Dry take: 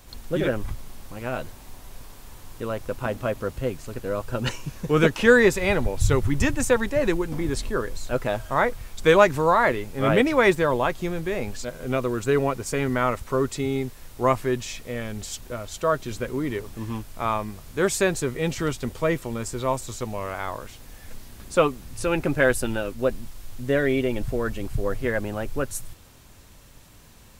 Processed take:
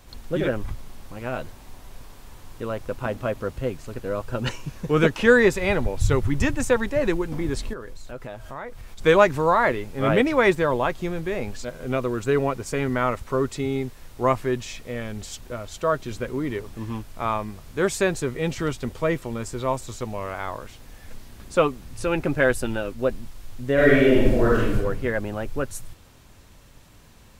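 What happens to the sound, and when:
0:07.73–0:09.01: downward compressor 3 to 1, threshold −35 dBFS
0:23.74–0:24.75: thrown reverb, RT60 0.99 s, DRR −7 dB
whole clip: high-shelf EQ 6,300 Hz −6 dB

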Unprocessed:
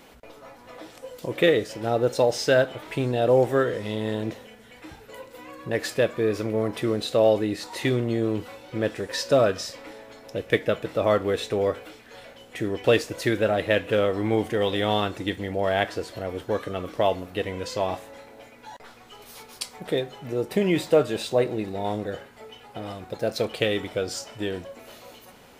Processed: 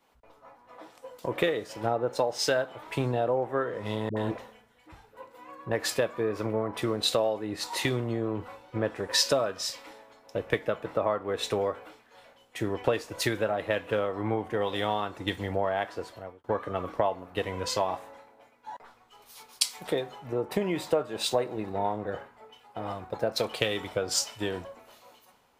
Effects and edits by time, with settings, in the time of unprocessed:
0:04.09–0:05.17: all-pass dispersion highs, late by 74 ms, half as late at 470 Hz
0:15.73–0:16.44: fade out equal-power
whole clip: parametric band 990 Hz +9.5 dB 1.1 octaves; downward compressor 8 to 1, threshold −25 dBFS; multiband upward and downward expander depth 100%

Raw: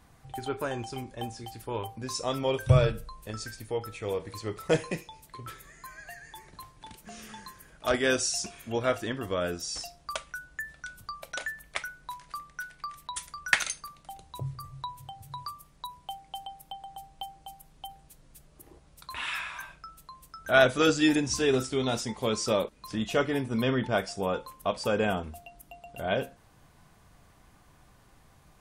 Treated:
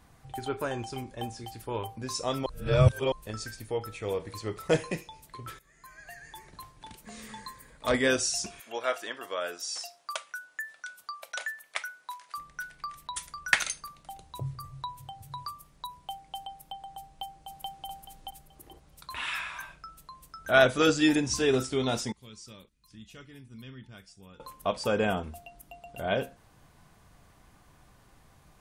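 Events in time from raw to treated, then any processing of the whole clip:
0:02.46–0:03.12: reverse
0:05.59–0:06.26: fade in, from −16 dB
0:07.04–0:08.08: EQ curve with evenly spaced ripples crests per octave 0.99, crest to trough 8 dB
0:08.60–0:12.38: high-pass filter 610 Hz
0:17.07–0:17.87: delay throw 430 ms, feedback 25%, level 0 dB
0:22.12–0:24.40: guitar amp tone stack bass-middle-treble 6-0-2

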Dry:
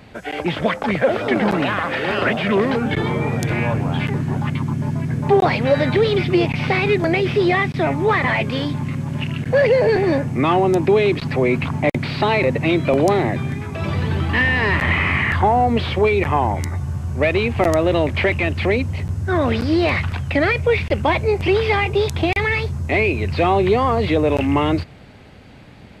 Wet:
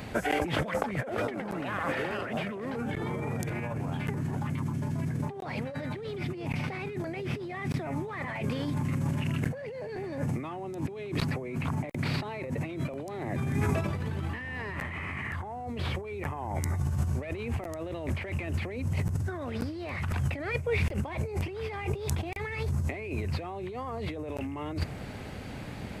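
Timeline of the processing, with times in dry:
0:20.37–0:20.96: duck −17.5 dB, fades 0.25 s
whole clip: high-shelf EQ 7,000 Hz +8 dB; compressor whose output falls as the input rises −28 dBFS, ratio −1; dynamic equaliser 3,600 Hz, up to −7 dB, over −47 dBFS, Q 1.1; level −5 dB

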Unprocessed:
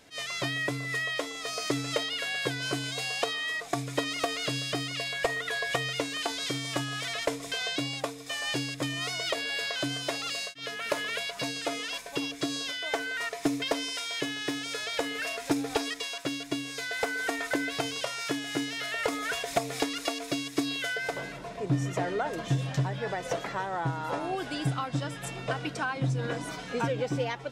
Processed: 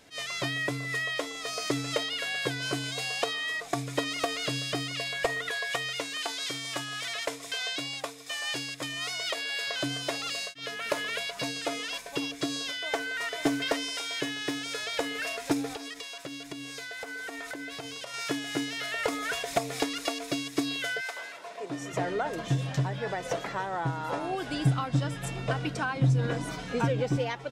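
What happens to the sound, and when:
0:05.51–0:09.67: low-shelf EQ 490 Hz −10 dB
0:12.75–0:13.23: delay throw 530 ms, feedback 25%, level −4 dB
0:15.72–0:18.14: downward compressor, threshold −35 dBFS
0:21.00–0:21.92: high-pass filter 1,200 Hz → 290 Hz
0:24.48–0:27.17: low-shelf EQ 170 Hz +9 dB

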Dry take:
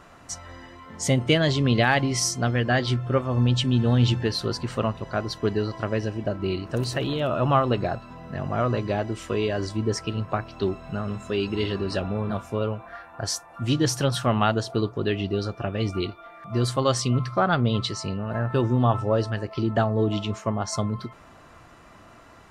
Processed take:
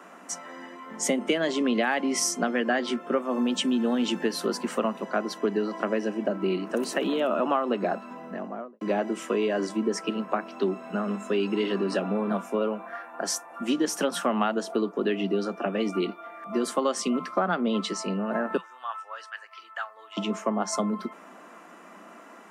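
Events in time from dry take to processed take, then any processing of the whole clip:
0:03.17–0:05.05: high-shelf EQ 10,000 Hz +10 dB
0:08.13–0:08.81: fade out and dull
0:18.57–0:20.17: four-pole ladder high-pass 1,100 Hz, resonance 30%
whole clip: Butterworth high-pass 180 Hz 96 dB per octave; parametric band 4,200 Hz −9.5 dB 0.71 octaves; downward compressor, threshold −24 dBFS; level +3 dB

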